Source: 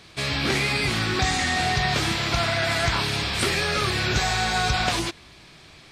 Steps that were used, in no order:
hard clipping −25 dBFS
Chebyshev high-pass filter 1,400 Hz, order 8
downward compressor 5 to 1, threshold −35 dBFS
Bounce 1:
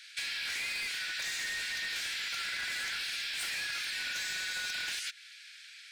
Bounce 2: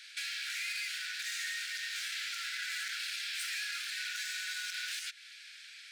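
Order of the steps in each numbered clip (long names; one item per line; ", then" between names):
Chebyshev high-pass filter, then hard clipping, then downward compressor
hard clipping, then downward compressor, then Chebyshev high-pass filter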